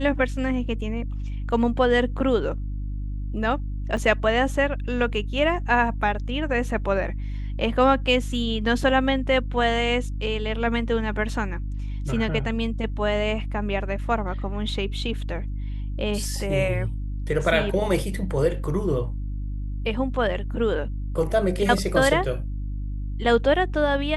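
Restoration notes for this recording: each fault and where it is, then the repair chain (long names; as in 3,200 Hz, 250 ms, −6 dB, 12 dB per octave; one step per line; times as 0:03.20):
mains hum 50 Hz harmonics 6 −29 dBFS
0:03.97: drop-out 2.6 ms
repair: hum removal 50 Hz, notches 6
repair the gap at 0:03.97, 2.6 ms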